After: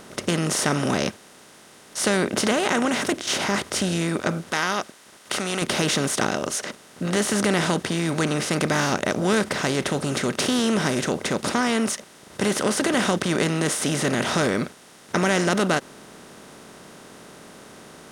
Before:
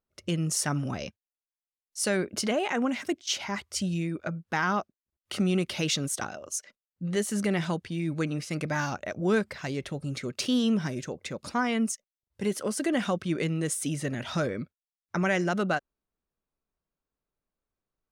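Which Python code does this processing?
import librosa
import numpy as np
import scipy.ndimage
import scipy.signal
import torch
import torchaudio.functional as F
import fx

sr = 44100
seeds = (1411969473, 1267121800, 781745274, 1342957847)

y = fx.bin_compress(x, sr, power=0.4)
y = fx.low_shelf(y, sr, hz=490.0, db=-10.5, at=(4.51, 5.62))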